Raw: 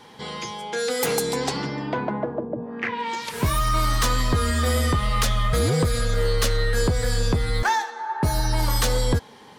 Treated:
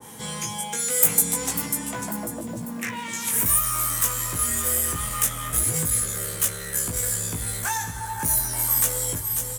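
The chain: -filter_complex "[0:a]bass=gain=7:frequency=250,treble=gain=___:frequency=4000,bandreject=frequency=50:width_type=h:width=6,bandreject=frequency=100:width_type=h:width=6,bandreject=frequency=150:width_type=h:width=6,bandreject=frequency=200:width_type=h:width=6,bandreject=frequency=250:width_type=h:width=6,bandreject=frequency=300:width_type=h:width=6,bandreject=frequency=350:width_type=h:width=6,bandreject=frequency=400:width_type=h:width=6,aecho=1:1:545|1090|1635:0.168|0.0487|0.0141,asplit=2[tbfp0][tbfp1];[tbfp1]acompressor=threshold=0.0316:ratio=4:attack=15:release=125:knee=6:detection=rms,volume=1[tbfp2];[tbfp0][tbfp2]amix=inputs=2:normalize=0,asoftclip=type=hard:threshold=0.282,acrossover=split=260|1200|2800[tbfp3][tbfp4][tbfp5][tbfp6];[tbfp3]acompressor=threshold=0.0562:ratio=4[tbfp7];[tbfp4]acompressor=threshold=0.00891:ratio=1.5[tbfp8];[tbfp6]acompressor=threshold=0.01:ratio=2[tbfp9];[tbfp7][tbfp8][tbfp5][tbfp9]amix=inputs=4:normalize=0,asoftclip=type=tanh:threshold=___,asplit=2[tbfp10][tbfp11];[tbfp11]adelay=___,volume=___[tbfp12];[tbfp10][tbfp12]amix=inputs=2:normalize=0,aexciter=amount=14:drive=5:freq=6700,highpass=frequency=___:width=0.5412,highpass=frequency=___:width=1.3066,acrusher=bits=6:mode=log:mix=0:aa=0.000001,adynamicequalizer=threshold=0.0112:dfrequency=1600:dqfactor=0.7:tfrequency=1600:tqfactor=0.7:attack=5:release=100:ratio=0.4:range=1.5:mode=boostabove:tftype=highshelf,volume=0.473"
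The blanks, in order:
-2, 0.119, 18, 0.708, 49, 49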